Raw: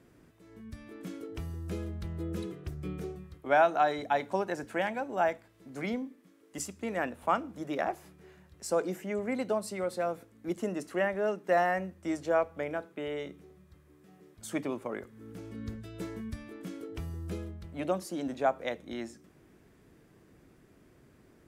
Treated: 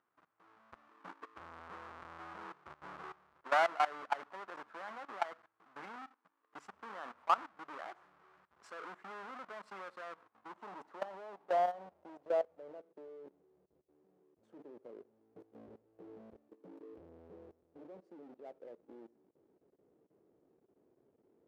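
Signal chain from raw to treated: half-waves squared off; low-pass sweep 1200 Hz -> 440 Hz, 10.08–13.38; level quantiser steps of 18 dB; differentiator; gain +9.5 dB

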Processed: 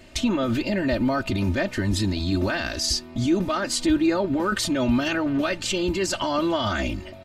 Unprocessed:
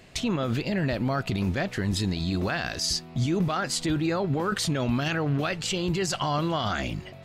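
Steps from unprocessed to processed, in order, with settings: low shelf 360 Hz +3.5 dB; comb 3.3 ms, depth 91%

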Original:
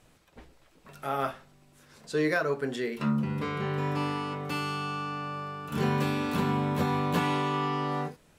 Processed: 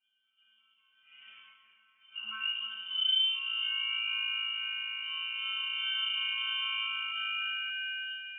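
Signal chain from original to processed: sample-and-hold 8×; Chebyshev high-pass 240 Hz, order 2; high shelf 2400 Hz +11 dB; transient shaper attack -8 dB, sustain +8 dB; octave resonator A, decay 0.75 s; treble ducked by the level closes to 1100 Hz, closed at -30 dBFS; split-band echo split 740 Hz, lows 0.152 s, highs 0.366 s, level -9 dB; echoes that change speed 0.232 s, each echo +2 st, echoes 2; inverted band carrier 3300 Hz; gain +6 dB

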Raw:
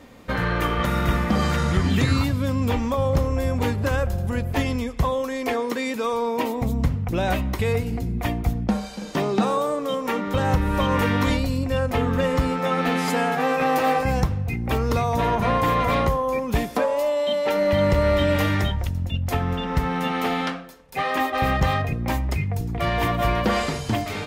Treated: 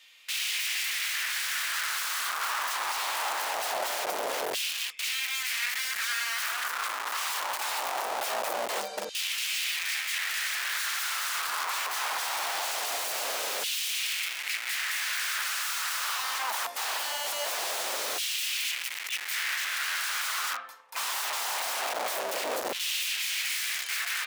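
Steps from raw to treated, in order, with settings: wrapped overs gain 26 dB; LFO high-pass saw down 0.22 Hz 500–3000 Hz; gain -2 dB

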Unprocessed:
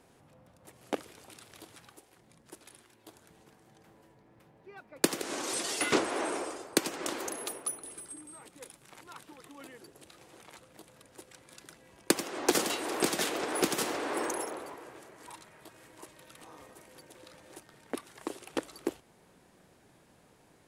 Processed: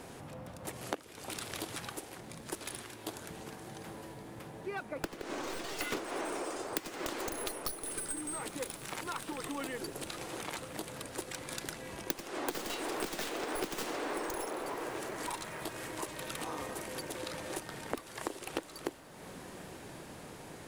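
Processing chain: tracing distortion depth 0.31 ms; compressor 10:1, threshold -48 dBFS, peak gain reduction 28 dB; 4.83–5.79 high shelf 4100 Hz -11.5 dB; diffused feedback echo 1.186 s, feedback 49%, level -15 dB; gain +13.5 dB

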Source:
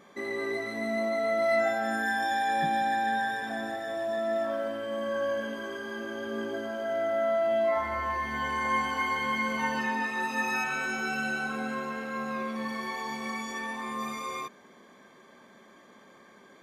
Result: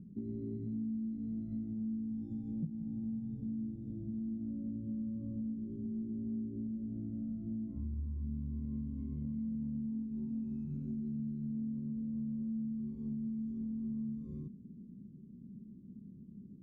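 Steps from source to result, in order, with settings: inverse Chebyshev low-pass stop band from 650 Hz, stop band 60 dB; compressor, threshold -53 dBFS, peak gain reduction 17.5 dB; gain +16.5 dB

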